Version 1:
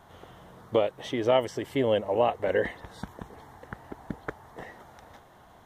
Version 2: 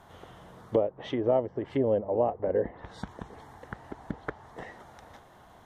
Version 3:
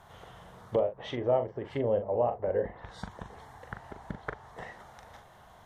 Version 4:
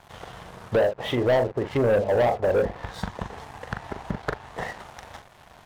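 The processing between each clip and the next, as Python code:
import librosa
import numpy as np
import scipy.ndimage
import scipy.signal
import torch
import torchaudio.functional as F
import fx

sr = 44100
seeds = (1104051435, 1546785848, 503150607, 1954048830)

y1 = fx.env_lowpass_down(x, sr, base_hz=700.0, full_db=-24.5)
y2 = fx.peak_eq(y1, sr, hz=290.0, db=-9.0, octaves=0.92)
y2 = fx.doubler(y2, sr, ms=41.0, db=-8)
y3 = fx.env_lowpass_down(y2, sr, base_hz=1400.0, full_db=-27.5)
y3 = fx.leveller(y3, sr, passes=3)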